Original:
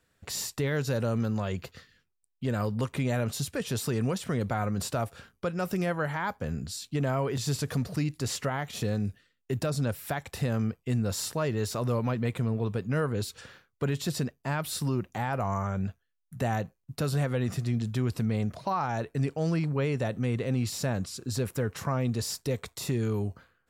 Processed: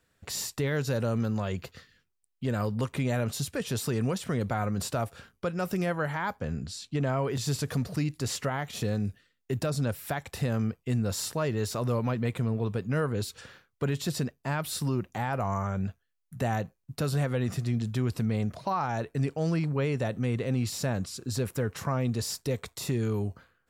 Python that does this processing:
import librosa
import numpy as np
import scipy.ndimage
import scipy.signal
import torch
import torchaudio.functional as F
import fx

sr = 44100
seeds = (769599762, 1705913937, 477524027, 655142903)

y = fx.bessel_lowpass(x, sr, hz=7000.0, order=2, at=(6.4, 7.24))